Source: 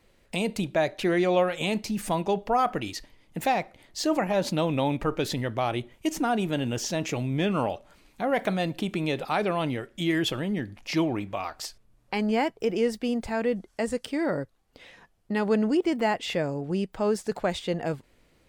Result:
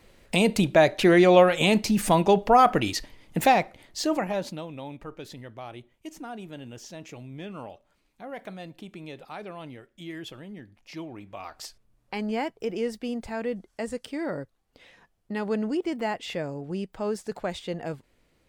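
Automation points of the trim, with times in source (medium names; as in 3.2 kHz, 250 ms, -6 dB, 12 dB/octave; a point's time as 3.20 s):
3.40 s +6.5 dB
4.34 s -3 dB
4.67 s -13 dB
11.11 s -13 dB
11.57 s -4 dB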